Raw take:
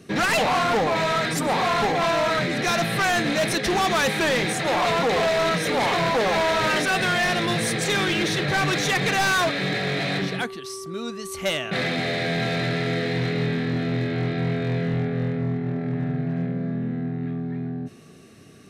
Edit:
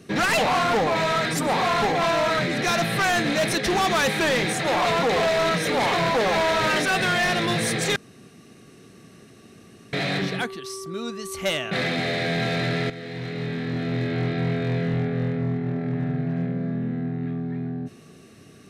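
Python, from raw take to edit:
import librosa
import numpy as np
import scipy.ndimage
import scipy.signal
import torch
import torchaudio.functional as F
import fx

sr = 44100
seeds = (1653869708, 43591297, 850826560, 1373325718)

y = fx.edit(x, sr, fx.room_tone_fill(start_s=7.96, length_s=1.97),
    fx.fade_in_from(start_s=12.9, length_s=1.24, floor_db=-13.5), tone=tone)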